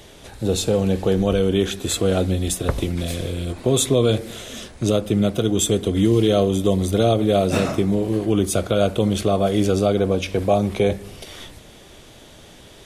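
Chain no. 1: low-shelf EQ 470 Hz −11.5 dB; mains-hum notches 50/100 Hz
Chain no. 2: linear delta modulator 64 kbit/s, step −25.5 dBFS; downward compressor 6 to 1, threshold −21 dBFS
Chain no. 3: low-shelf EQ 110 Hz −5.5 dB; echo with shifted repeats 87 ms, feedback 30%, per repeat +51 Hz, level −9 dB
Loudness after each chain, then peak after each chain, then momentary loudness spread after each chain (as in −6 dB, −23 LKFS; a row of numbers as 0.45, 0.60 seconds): −26.0, −26.5, −20.5 LKFS; −8.0, −9.5, −6.0 dBFS; 11, 5, 9 LU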